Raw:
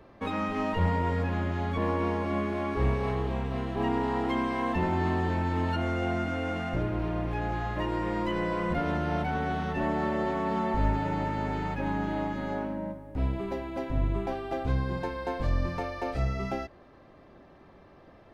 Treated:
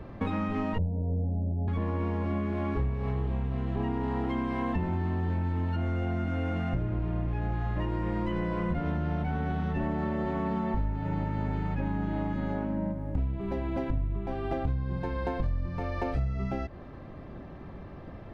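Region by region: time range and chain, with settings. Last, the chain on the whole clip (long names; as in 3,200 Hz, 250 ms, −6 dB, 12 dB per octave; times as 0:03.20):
0:00.78–0:01.68: Butterworth low-pass 780 Hz 72 dB per octave + mains-hum notches 50/100/150/200/250/300/350/400 Hz
whole clip: bass and treble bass +10 dB, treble −7 dB; downward compressor, threshold −33 dBFS; level +5.5 dB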